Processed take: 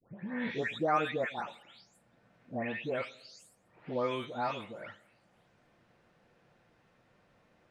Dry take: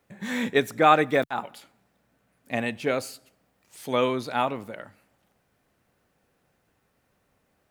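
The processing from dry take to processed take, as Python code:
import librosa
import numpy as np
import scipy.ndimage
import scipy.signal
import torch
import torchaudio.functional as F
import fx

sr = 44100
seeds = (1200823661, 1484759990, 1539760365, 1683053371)

y = fx.spec_delay(x, sr, highs='late', ms=388)
y = scipy.signal.sosfilt(scipy.signal.butter(2, 4500.0, 'lowpass', fs=sr, output='sos'), y)
y = fx.echo_banded(y, sr, ms=102, feedback_pct=41, hz=520.0, wet_db=-23)
y = fx.band_squash(y, sr, depth_pct=40)
y = y * 10.0 ** (-7.5 / 20.0)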